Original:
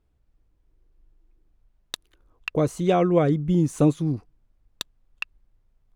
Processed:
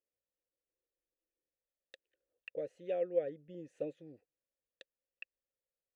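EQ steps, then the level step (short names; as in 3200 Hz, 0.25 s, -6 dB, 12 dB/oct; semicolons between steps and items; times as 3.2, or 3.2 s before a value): vowel filter e; -8.0 dB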